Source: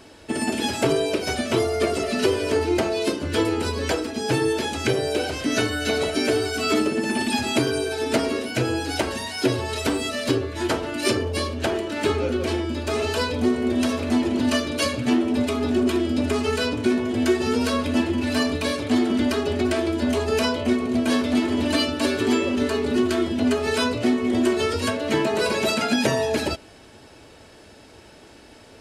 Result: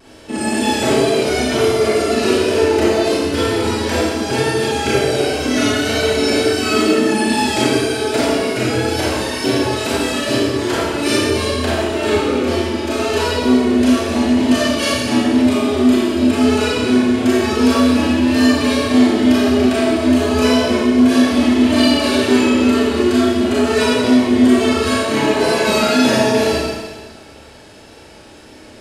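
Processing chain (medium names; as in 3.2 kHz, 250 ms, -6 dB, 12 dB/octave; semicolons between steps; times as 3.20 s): wow and flutter 47 cents; Schroeder reverb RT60 1.5 s, combs from 28 ms, DRR -8 dB; trim -1.5 dB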